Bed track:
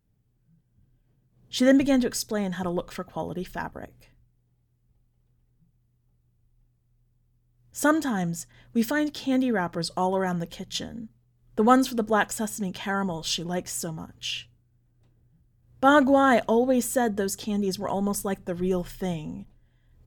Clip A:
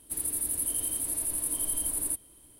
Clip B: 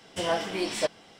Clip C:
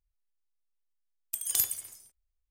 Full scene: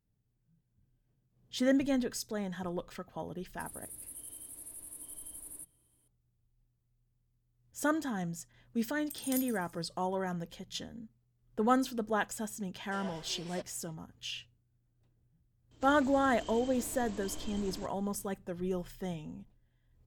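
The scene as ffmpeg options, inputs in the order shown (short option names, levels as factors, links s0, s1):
-filter_complex "[1:a]asplit=2[s0][s1];[0:a]volume=0.355[s2];[2:a]highpass=410[s3];[s1]aresample=16000,aresample=44100[s4];[s0]atrim=end=2.59,asetpts=PTS-STARTPTS,volume=0.15,afade=t=in:d=0.004:c=hsin,afade=t=out:st=2.586:d=0.004:c=hsin,adelay=153909S[s5];[3:a]atrim=end=2.5,asetpts=PTS-STARTPTS,volume=0.266,afade=t=in:d=0.004:c=hsin,afade=t=out:st=2.496:d=0.004:c=hsin,adelay=7770[s6];[s3]atrim=end=1.19,asetpts=PTS-STARTPTS,volume=0.133,afade=t=in:d=0.004:c=hsin,afade=t=out:st=1.186:d=0.004:c=hsin,adelay=12750[s7];[s4]atrim=end=2.59,asetpts=PTS-STARTPTS,volume=0.891,afade=t=in:d=0.004:c=hsin,afade=t=out:st=2.586:d=0.004:c=hsin,adelay=15710[s8];[s2][s5][s6][s7][s8]amix=inputs=5:normalize=0"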